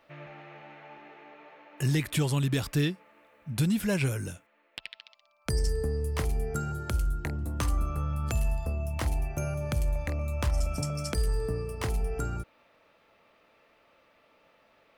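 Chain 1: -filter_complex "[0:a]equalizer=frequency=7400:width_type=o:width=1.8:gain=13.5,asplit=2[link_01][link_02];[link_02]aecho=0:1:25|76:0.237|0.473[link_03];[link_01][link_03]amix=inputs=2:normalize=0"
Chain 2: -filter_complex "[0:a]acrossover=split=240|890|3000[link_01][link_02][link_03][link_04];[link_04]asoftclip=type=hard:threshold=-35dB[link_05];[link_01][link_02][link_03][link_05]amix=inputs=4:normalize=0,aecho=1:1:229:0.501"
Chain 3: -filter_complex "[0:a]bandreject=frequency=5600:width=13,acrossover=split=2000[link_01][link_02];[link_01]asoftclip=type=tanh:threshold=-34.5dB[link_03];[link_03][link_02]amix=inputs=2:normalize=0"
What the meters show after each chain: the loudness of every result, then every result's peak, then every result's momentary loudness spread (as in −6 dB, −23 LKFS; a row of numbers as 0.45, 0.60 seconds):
−28.0, −30.0, −38.0 LKFS; −6.5, −15.0, −18.5 dBFS; 21, 19, 14 LU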